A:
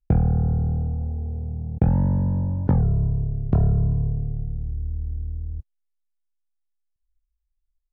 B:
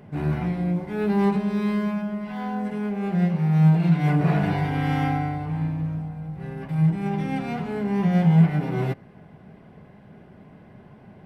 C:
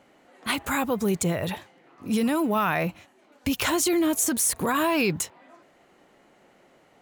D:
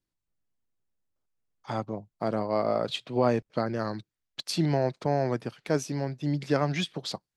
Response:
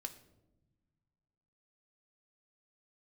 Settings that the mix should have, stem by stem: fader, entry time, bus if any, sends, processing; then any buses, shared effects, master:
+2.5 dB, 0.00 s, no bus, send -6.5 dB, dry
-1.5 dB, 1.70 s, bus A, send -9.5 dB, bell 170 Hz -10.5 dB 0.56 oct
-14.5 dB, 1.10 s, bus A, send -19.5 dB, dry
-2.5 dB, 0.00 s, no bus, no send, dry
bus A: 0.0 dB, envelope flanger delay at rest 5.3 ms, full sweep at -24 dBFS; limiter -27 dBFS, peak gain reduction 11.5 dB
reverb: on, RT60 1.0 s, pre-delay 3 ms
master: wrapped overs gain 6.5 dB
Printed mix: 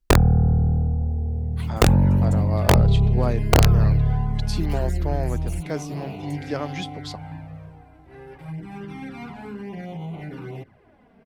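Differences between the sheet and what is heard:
stem B: send off; reverb return -8.5 dB

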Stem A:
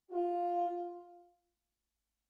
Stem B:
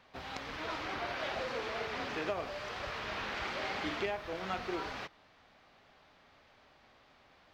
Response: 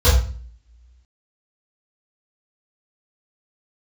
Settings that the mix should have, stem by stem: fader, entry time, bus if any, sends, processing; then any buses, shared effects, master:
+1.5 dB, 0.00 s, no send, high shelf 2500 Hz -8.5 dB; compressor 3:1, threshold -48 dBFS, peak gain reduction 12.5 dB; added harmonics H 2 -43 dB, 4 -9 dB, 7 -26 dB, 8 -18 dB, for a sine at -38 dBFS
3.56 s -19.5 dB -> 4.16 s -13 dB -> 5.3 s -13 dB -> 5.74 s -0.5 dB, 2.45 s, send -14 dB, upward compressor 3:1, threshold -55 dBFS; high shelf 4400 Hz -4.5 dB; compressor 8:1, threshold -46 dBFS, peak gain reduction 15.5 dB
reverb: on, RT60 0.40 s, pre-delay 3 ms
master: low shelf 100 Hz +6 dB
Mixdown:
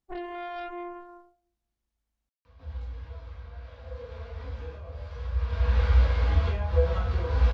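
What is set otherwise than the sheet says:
stem A +1.5 dB -> +8.0 dB; stem B: send -14 dB -> -7.5 dB

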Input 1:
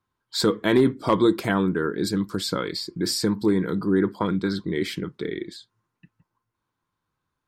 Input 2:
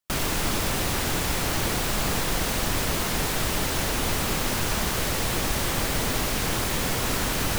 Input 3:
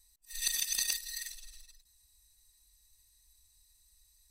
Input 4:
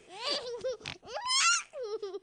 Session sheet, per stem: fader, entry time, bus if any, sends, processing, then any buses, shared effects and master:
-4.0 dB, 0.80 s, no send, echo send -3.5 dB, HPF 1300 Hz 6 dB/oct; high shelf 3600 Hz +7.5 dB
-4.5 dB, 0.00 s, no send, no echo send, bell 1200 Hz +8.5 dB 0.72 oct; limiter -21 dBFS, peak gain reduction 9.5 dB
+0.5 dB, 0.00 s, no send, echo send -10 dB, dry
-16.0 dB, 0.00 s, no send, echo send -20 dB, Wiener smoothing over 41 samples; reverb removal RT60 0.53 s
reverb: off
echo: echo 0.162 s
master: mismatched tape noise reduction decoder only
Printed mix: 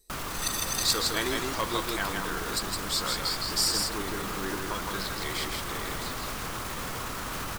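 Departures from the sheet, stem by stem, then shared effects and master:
stem 1: entry 0.80 s -> 0.50 s; master: missing mismatched tape noise reduction decoder only

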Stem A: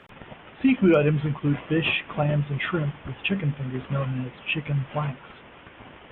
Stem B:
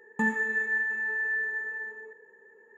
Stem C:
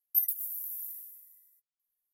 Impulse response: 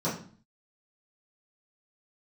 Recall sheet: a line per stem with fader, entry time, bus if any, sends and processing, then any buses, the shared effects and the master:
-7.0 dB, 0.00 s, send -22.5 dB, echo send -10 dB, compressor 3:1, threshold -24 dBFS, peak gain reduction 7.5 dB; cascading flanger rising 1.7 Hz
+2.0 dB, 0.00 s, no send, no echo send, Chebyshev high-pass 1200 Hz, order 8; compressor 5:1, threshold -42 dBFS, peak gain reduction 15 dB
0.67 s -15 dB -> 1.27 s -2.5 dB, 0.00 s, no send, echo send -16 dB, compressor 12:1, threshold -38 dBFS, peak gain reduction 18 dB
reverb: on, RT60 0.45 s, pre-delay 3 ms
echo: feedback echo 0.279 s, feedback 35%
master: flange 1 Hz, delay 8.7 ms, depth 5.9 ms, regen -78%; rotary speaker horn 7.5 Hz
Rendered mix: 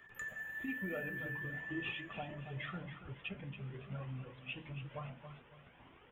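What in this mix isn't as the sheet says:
stem C -15.0 dB -> -24.0 dB; master: missing rotary speaker horn 7.5 Hz

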